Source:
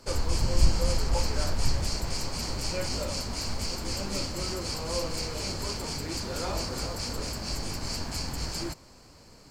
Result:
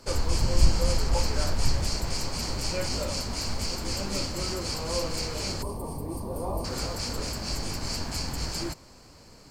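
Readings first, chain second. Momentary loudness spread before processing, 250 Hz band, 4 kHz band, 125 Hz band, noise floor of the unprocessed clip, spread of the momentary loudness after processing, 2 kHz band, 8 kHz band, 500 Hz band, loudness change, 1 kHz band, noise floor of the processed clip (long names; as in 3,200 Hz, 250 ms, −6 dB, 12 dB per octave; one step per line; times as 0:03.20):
5 LU, +1.5 dB, +1.0 dB, +1.5 dB, −53 dBFS, 7 LU, +1.0 dB, +1.0 dB, +1.5 dB, +1.5 dB, +1.5 dB, −51 dBFS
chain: gain on a spectral selection 0:05.62–0:06.65, 1,200–8,300 Hz −21 dB
level +1.5 dB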